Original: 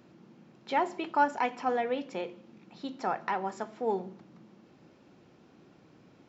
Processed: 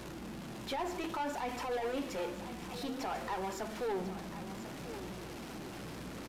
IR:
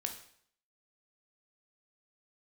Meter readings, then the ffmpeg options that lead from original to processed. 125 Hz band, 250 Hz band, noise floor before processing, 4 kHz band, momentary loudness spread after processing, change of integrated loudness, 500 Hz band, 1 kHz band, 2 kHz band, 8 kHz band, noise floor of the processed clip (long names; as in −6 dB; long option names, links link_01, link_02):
+5.5 dB, −1.5 dB, −60 dBFS, +2.0 dB, 8 LU, −7.5 dB, −4.0 dB, −8.0 dB, −6.0 dB, can't be measured, −46 dBFS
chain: -af "aeval=exprs='val(0)+0.5*0.01*sgn(val(0))':channel_layout=same,alimiter=limit=-23.5dB:level=0:latency=1,asoftclip=type=tanh:threshold=-31dB,aeval=exprs='val(0)+0.002*(sin(2*PI*60*n/s)+sin(2*PI*2*60*n/s)/2+sin(2*PI*3*60*n/s)/3+sin(2*PI*4*60*n/s)/4+sin(2*PI*5*60*n/s)/5)':channel_layout=same,flanger=delay=1.8:depth=9.9:regen=-52:speed=0.58:shape=sinusoidal,aecho=1:1:1044:0.251,aresample=32000,aresample=44100,volume=3.5dB"